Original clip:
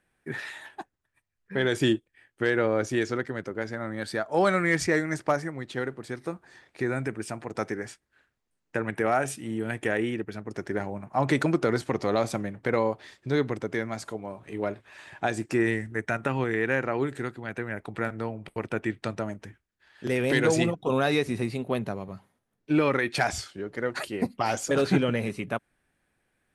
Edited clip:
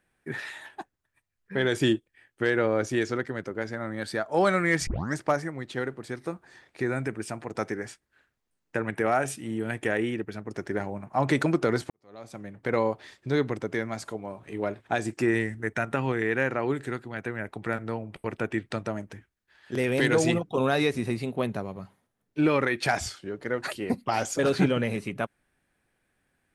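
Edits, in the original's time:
0:04.87: tape start 0.27 s
0:11.90–0:12.77: fade in quadratic
0:14.87–0:15.19: remove

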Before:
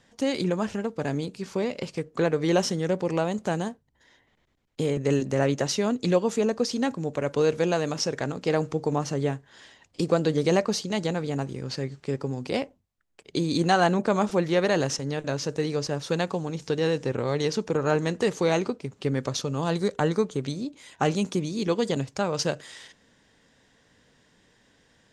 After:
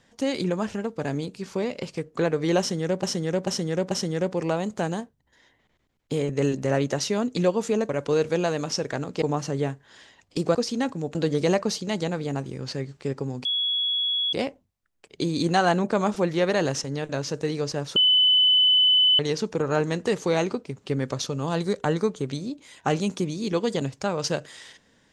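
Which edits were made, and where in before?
0:02.59–0:03.03: repeat, 4 plays
0:06.57–0:07.17: move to 0:10.18
0:08.50–0:08.85: remove
0:12.48: insert tone 3,360 Hz −22 dBFS 0.88 s
0:16.11–0:17.34: beep over 3,010 Hz −15 dBFS

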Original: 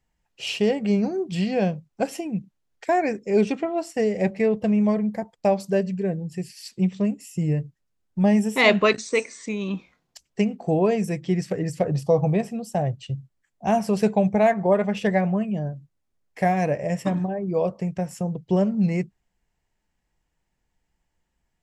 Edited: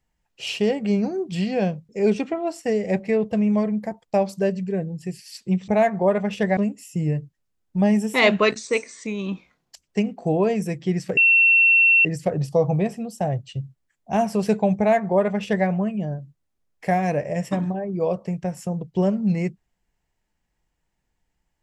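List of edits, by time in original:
0:01.89–0:03.20: remove
0:11.59: insert tone 2,710 Hz −12 dBFS 0.88 s
0:14.32–0:15.21: duplicate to 0:06.99

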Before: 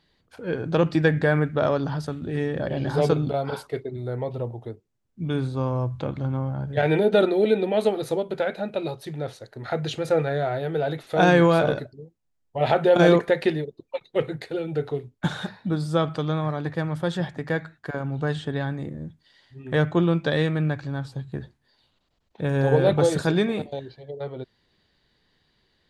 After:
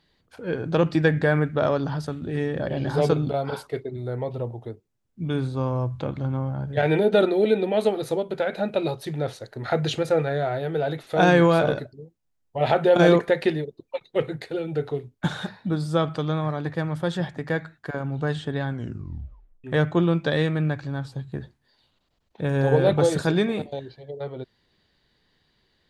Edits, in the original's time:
0:08.53–0:10.03: clip gain +3.5 dB
0:18.67: tape stop 0.97 s

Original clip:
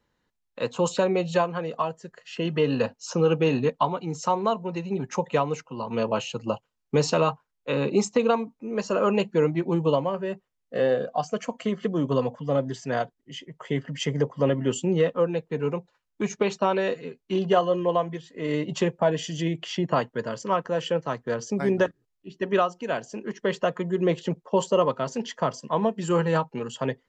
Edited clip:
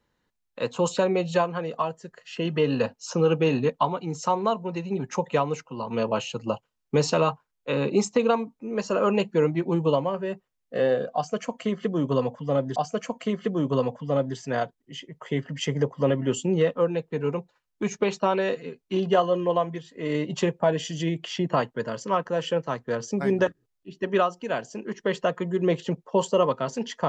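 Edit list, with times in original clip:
0:11.15–0:12.76: repeat, 2 plays

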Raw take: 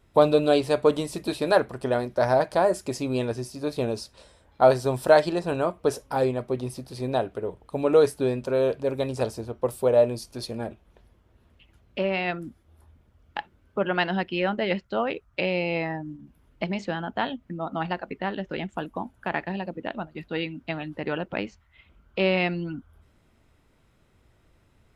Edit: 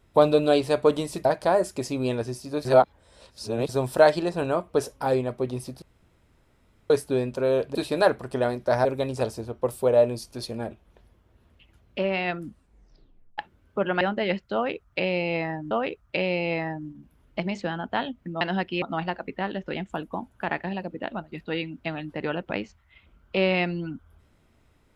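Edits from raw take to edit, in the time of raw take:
0:01.25–0:02.35: move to 0:08.85
0:03.75–0:04.79: reverse
0:06.92–0:08.00: fill with room tone
0:12.42: tape stop 0.96 s
0:14.01–0:14.42: move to 0:17.65
0:14.95–0:16.12: repeat, 2 plays

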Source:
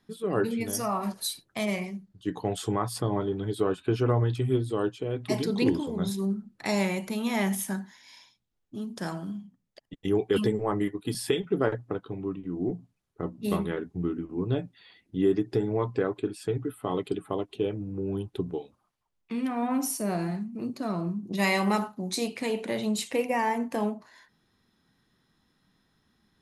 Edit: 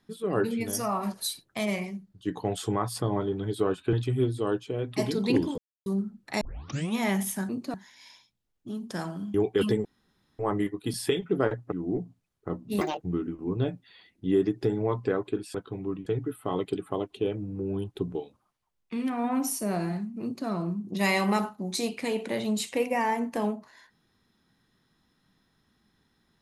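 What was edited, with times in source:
0:03.93–0:04.25: remove
0:05.90–0:06.18: silence
0:06.73: tape start 0.55 s
0:09.41–0:10.09: remove
0:10.60: splice in room tone 0.54 s
0:11.93–0:12.45: move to 0:16.45
0:13.54–0:13.92: play speed 186%
0:20.61–0:20.86: duplicate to 0:07.81

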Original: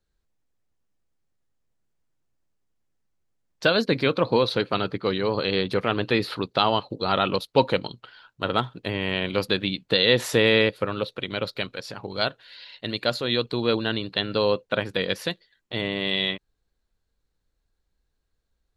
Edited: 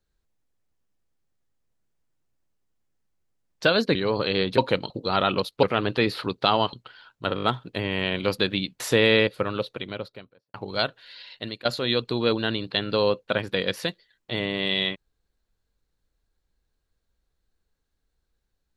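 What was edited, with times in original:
0:03.95–0:05.13: remove
0:05.76–0:06.86: swap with 0:07.59–0:07.91
0:08.53: stutter 0.02 s, 5 plays
0:09.90–0:10.22: remove
0:10.97–0:11.96: fade out and dull
0:12.78–0:13.07: fade out, to −17 dB

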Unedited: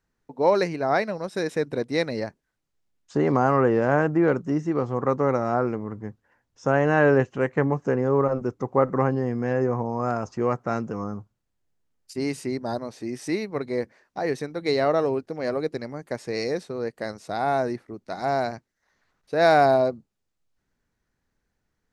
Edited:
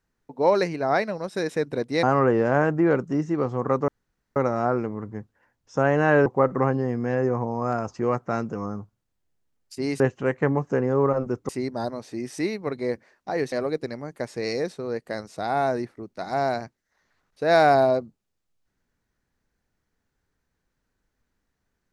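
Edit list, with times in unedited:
0:02.03–0:03.40: remove
0:05.25: splice in room tone 0.48 s
0:07.15–0:08.64: move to 0:12.38
0:14.41–0:15.43: remove

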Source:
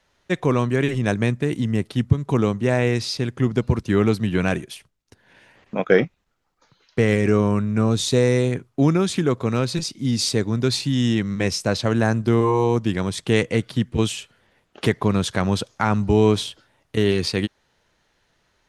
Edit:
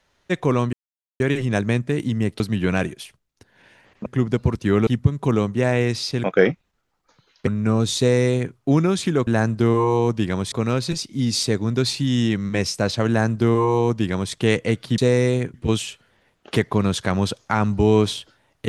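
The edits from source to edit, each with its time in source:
0:00.73: splice in silence 0.47 s
0:01.93–0:03.30: swap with 0:04.11–0:05.77
0:07.00–0:07.58: remove
0:08.09–0:08.65: duplicate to 0:13.84
0:11.94–0:13.19: duplicate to 0:09.38

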